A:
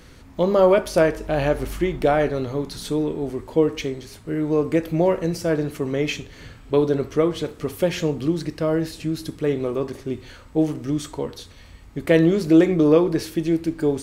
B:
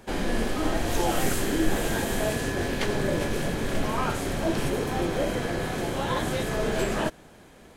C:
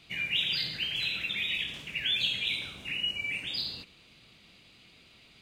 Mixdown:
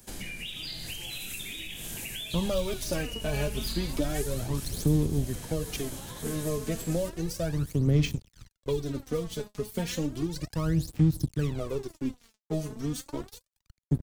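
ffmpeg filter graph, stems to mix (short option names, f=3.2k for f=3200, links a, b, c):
-filter_complex "[0:a]bandreject=f=2.1k:w=28,aeval=exprs='sgn(val(0))*max(abs(val(0))-0.015,0)':c=same,aphaser=in_gain=1:out_gain=1:delay=4.8:decay=0.73:speed=0.33:type=sinusoidal,adelay=1950,volume=-8.5dB[a];[1:a]acompressor=threshold=-30dB:ratio=6,crystalizer=i=3.5:c=0,volume=-14dB[b];[2:a]adelay=100,volume=-4dB[c];[b][c]amix=inputs=2:normalize=0,acompressor=threshold=-39dB:ratio=5,volume=0dB[d];[a][d]amix=inputs=2:normalize=0,bass=f=250:g=10,treble=f=4k:g=8,acrossover=split=190|3000[e][f][g];[f]acompressor=threshold=-30dB:ratio=6[h];[e][h][g]amix=inputs=3:normalize=0"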